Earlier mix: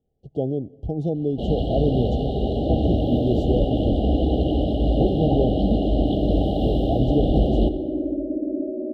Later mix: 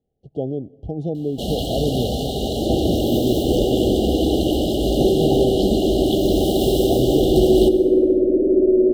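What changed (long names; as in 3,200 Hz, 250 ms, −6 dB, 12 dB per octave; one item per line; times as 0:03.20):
first sound: remove high-frequency loss of the air 480 metres
second sound: remove pair of resonant band-passes 420 Hz, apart 1.1 octaves
master: add low-shelf EQ 81 Hz −6 dB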